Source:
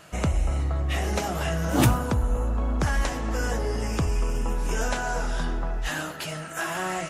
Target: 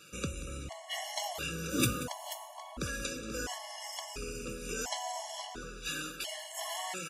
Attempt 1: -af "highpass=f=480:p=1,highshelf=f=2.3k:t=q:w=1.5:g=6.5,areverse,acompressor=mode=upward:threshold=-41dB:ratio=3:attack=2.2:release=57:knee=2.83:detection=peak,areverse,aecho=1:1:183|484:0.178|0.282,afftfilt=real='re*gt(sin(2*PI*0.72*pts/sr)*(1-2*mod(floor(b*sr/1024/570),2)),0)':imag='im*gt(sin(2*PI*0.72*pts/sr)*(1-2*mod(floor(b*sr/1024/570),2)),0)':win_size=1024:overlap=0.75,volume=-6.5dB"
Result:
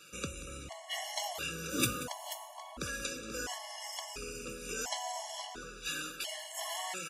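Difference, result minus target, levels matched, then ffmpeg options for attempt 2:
250 Hz band -3.0 dB
-af "highpass=f=230:p=1,highshelf=f=2.3k:t=q:w=1.5:g=6.5,areverse,acompressor=mode=upward:threshold=-41dB:ratio=3:attack=2.2:release=57:knee=2.83:detection=peak,areverse,aecho=1:1:183|484:0.178|0.282,afftfilt=real='re*gt(sin(2*PI*0.72*pts/sr)*(1-2*mod(floor(b*sr/1024/570),2)),0)':imag='im*gt(sin(2*PI*0.72*pts/sr)*(1-2*mod(floor(b*sr/1024/570),2)),0)':win_size=1024:overlap=0.75,volume=-6.5dB"

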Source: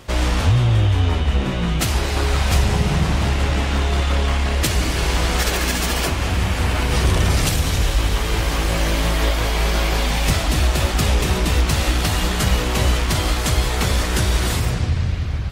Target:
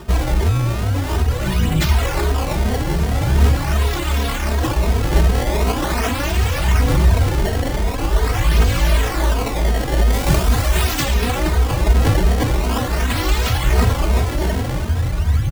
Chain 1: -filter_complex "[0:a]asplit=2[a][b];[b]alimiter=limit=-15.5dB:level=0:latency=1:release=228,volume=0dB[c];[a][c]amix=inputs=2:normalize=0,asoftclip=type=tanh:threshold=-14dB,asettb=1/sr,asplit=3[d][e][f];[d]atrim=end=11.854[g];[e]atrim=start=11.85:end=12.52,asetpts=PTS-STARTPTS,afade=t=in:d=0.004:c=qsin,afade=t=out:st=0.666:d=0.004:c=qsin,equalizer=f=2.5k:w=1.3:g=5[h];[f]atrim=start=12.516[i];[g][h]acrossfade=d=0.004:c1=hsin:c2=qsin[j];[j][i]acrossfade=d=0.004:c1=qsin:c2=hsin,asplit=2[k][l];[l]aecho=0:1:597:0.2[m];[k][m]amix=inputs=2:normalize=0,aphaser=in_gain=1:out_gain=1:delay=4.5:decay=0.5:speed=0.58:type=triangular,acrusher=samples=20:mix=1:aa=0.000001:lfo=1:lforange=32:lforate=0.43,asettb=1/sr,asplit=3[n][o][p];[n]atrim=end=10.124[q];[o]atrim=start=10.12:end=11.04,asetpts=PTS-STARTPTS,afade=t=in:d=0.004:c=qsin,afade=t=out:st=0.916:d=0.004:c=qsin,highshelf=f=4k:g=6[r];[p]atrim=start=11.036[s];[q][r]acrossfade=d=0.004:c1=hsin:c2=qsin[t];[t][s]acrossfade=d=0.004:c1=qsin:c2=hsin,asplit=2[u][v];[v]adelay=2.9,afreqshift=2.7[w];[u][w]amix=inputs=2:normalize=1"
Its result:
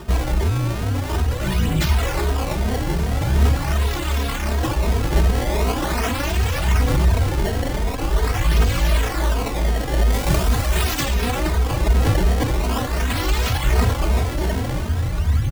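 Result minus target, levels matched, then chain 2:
soft clip: distortion +9 dB
-filter_complex "[0:a]asplit=2[a][b];[b]alimiter=limit=-15.5dB:level=0:latency=1:release=228,volume=0dB[c];[a][c]amix=inputs=2:normalize=0,asoftclip=type=tanh:threshold=-7dB,asettb=1/sr,asplit=3[d][e][f];[d]atrim=end=11.854[g];[e]atrim=start=11.85:end=12.52,asetpts=PTS-STARTPTS,afade=t=in:d=0.004:c=qsin,afade=t=out:st=0.666:d=0.004:c=qsin,equalizer=f=2.5k:w=1.3:g=5[h];[f]atrim=start=12.516[i];[g][h]acrossfade=d=0.004:c1=hsin:c2=qsin[j];[j][i]acrossfade=d=0.004:c1=qsin:c2=hsin,asplit=2[k][l];[l]aecho=0:1:597:0.2[m];[k][m]amix=inputs=2:normalize=0,aphaser=in_gain=1:out_gain=1:delay=4.5:decay=0.5:speed=0.58:type=triangular,acrusher=samples=20:mix=1:aa=0.000001:lfo=1:lforange=32:lforate=0.43,asettb=1/sr,asplit=3[n][o][p];[n]atrim=end=10.124[q];[o]atrim=start=10.12:end=11.04,asetpts=PTS-STARTPTS,afade=t=in:d=0.004:c=qsin,afade=t=out:st=0.916:d=0.004:c=qsin,highshelf=f=4k:g=6[r];[p]atrim=start=11.036[s];[q][r]acrossfade=d=0.004:c1=hsin:c2=qsin[t];[t][s]acrossfade=d=0.004:c1=qsin:c2=hsin,asplit=2[u][v];[v]adelay=2.9,afreqshift=2.7[w];[u][w]amix=inputs=2:normalize=1"

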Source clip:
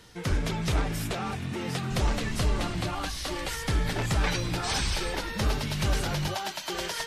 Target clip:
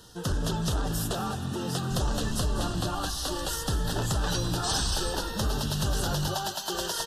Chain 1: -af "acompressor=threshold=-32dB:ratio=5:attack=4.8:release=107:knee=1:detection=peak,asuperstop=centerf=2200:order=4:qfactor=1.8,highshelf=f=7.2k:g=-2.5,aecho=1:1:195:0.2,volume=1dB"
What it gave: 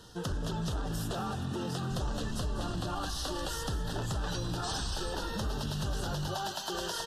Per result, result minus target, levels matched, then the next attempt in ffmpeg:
compressor: peak gain reduction +6 dB; 8000 Hz band -3.0 dB
-af "acompressor=threshold=-24.5dB:ratio=5:attack=4.8:release=107:knee=1:detection=peak,asuperstop=centerf=2200:order=4:qfactor=1.8,highshelf=f=7.2k:g=-2.5,aecho=1:1:195:0.2,volume=1dB"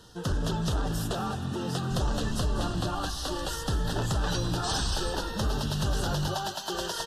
8000 Hz band -3.5 dB
-af "acompressor=threshold=-24.5dB:ratio=5:attack=4.8:release=107:knee=1:detection=peak,asuperstop=centerf=2200:order=4:qfactor=1.8,highshelf=f=7.2k:g=6.5,aecho=1:1:195:0.2,volume=1dB"

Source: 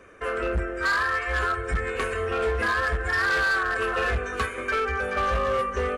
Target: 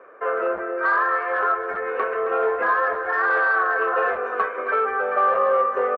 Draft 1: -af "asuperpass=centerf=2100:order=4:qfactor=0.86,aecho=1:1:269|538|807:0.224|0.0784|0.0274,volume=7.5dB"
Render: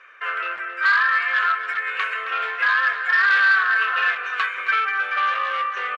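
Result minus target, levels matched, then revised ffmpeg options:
2000 Hz band +4.0 dB
-af "asuperpass=centerf=800:order=4:qfactor=0.86,aecho=1:1:269|538|807:0.224|0.0784|0.0274,volume=7.5dB"

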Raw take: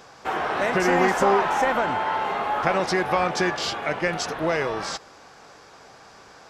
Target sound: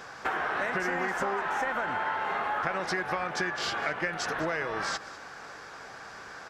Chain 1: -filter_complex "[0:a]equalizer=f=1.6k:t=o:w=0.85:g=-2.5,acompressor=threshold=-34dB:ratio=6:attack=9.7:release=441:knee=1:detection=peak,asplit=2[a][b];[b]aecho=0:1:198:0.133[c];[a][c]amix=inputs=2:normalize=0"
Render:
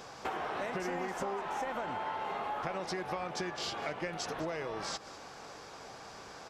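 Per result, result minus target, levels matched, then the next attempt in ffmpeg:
2000 Hz band -5.0 dB; compressor: peak gain reduction +4 dB
-filter_complex "[0:a]equalizer=f=1.6k:t=o:w=0.85:g=8.5,acompressor=threshold=-34dB:ratio=6:attack=9.7:release=441:knee=1:detection=peak,asplit=2[a][b];[b]aecho=0:1:198:0.133[c];[a][c]amix=inputs=2:normalize=0"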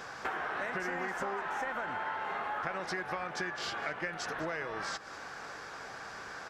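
compressor: peak gain reduction +6 dB
-filter_complex "[0:a]equalizer=f=1.6k:t=o:w=0.85:g=8.5,acompressor=threshold=-27dB:ratio=6:attack=9.7:release=441:knee=1:detection=peak,asplit=2[a][b];[b]aecho=0:1:198:0.133[c];[a][c]amix=inputs=2:normalize=0"

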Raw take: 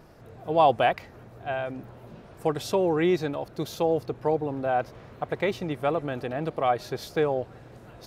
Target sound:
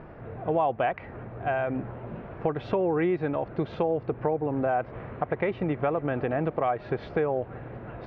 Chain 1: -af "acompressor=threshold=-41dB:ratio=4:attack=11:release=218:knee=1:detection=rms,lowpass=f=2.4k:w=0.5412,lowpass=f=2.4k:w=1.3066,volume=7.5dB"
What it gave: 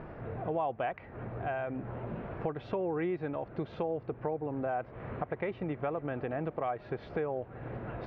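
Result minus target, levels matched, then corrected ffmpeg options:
compressor: peak gain reduction +7.5 dB
-af "acompressor=threshold=-31dB:ratio=4:attack=11:release=218:knee=1:detection=rms,lowpass=f=2.4k:w=0.5412,lowpass=f=2.4k:w=1.3066,volume=7.5dB"

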